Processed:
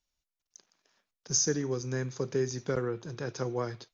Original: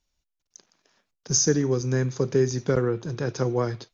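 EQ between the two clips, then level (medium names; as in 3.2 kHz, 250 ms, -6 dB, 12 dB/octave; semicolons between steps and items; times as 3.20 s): bass shelf 470 Hz -5 dB; -5.0 dB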